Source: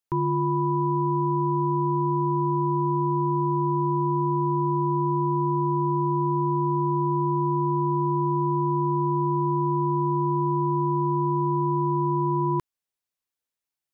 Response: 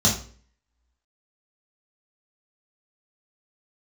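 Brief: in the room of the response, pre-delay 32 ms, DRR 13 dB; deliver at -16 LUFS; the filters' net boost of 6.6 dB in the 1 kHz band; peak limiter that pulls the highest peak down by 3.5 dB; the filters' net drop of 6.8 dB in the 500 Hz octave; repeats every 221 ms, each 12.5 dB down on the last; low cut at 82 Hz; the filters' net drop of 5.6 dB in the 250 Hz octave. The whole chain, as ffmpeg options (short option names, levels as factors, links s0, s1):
-filter_complex "[0:a]highpass=82,equalizer=f=250:t=o:g=-7,equalizer=f=500:t=o:g=-8,equalizer=f=1000:t=o:g=8.5,alimiter=limit=0.119:level=0:latency=1,aecho=1:1:221|442|663:0.237|0.0569|0.0137,asplit=2[s0][s1];[1:a]atrim=start_sample=2205,adelay=32[s2];[s1][s2]afir=irnorm=-1:irlink=0,volume=0.0422[s3];[s0][s3]amix=inputs=2:normalize=0,volume=2.66"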